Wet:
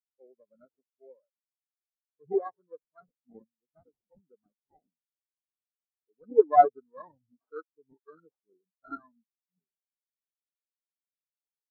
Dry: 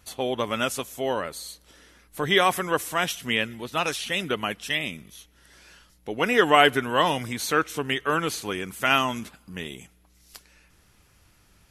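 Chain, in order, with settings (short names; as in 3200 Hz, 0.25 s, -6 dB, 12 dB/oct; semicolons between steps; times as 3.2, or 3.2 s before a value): sample-and-hold 16×; spectral expander 4:1; gain -4.5 dB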